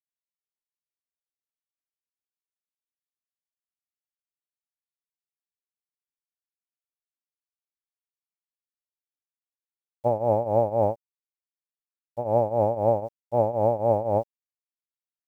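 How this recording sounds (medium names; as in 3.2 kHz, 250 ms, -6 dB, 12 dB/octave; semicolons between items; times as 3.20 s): a quantiser's noise floor 10-bit, dither none; tremolo triangle 3.9 Hz, depth 85%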